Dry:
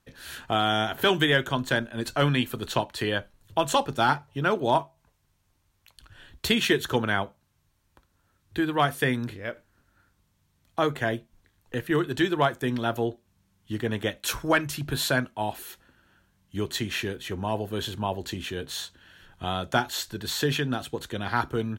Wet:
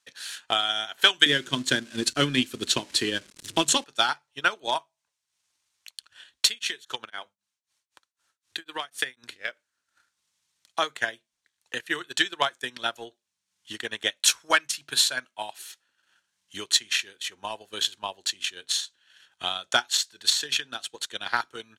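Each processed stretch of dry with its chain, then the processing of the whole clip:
0:01.26–0:03.84: converter with a step at zero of −34.5 dBFS + low shelf with overshoot 460 Hz +13.5 dB, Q 1.5
0:06.47–0:09.33: downward compressor, threshold −24 dBFS + mains-hum notches 50/100/150/200/250 Hz + tremolo along a rectified sine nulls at 3.9 Hz
whole clip: meter weighting curve ITU-R 468; transient designer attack +10 dB, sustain −8 dB; level −7.5 dB

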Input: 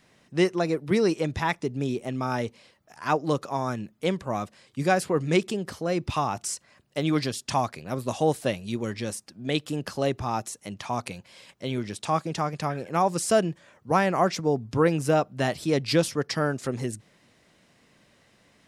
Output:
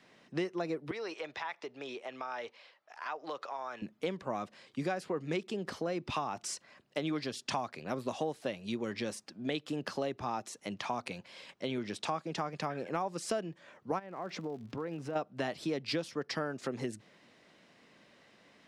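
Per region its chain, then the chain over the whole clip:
0:00.91–0:03.82: three-way crossover with the lows and the highs turned down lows −23 dB, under 510 Hz, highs −12 dB, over 5,400 Hz + downward compressor 3 to 1, threshold −37 dBFS
0:13.98–0:15.15: low-pass filter 2,200 Hz 6 dB per octave + downward compressor, threshold −34 dBFS + surface crackle 180 per second −46 dBFS
whole clip: three-way crossover with the lows and the highs turned down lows −13 dB, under 170 Hz, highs −12 dB, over 5,700 Hz; downward compressor 5 to 1, threshold −32 dBFS

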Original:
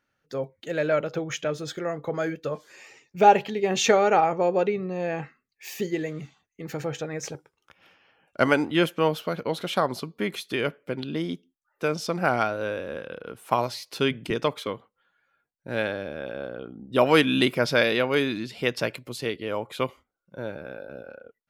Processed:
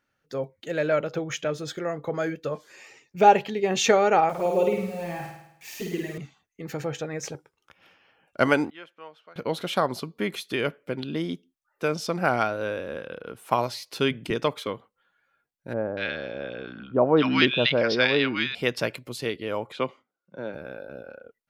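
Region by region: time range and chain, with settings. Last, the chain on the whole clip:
0:04.29–0:06.18: bit-depth reduction 8 bits, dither none + flanger swept by the level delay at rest 4.8 ms, full sweep at −19 dBFS + flutter between parallel walls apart 9 metres, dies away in 0.78 s
0:08.70–0:09.36: low-pass filter 1,500 Hz + first difference
0:15.73–0:18.55: Butterworth low-pass 5,500 Hz 48 dB per octave + parametric band 3,100 Hz +2.5 dB 2.3 octaves + multiband delay without the direct sound lows, highs 240 ms, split 1,100 Hz
0:19.72–0:20.54: high-pass filter 140 Hz 24 dB per octave + high-frequency loss of the air 100 metres
whole clip: no processing

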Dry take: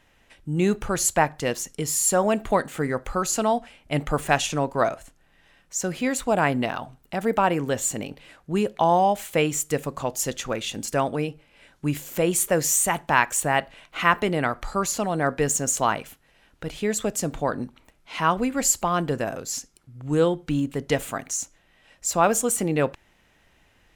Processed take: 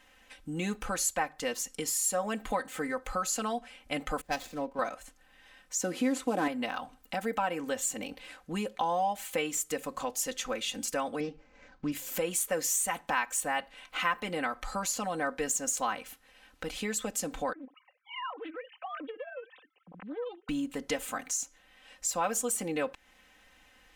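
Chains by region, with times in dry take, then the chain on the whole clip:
0:04.21–0:04.79: running median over 15 samples + parametric band 1,200 Hz −7 dB 1.6 octaves + multiband upward and downward expander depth 100%
0:05.83–0:06.48: variable-slope delta modulation 64 kbit/s + high-pass filter 61 Hz + parametric band 320 Hz +13 dB 1.2 octaves
0:11.20–0:11.92: running median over 15 samples + low-pass filter 6,100 Hz 24 dB per octave + low-shelf EQ 230 Hz +6.5 dB
0:17.53–0:20.49: three sine waves on the formant tracks + downward compressor 2.5 to 1, threshold −41 dBFS + highs frequency-modulated by the lows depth 0.28 ms
whole clip: low-shelf EQ 490 Hz −8 dB; comb filter 3.9 ms, depth 82%; downward compressor 2 to 1, threshold −35 dBFS

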